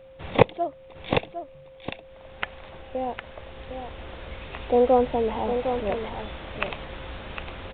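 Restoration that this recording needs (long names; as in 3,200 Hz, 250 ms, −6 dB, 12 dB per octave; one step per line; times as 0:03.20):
notch filter 530 Hz, Q 30
echo removal 757 ms −8 dB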